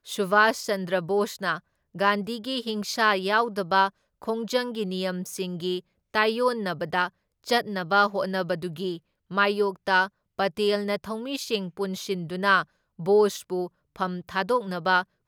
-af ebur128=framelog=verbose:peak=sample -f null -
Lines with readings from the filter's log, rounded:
Integrated loudness:
  I:         -25.8 LUFS
  Threshold: -36.0 LUFS
Loudness range:
  LRA:         2.0 LU
  Threshold: -46.2 LUFS
  LRA low:   -27.4 LUFS
  LRA high:  -25.4 LUFS
Sample peak:
  Peak:       -6.4 dBFS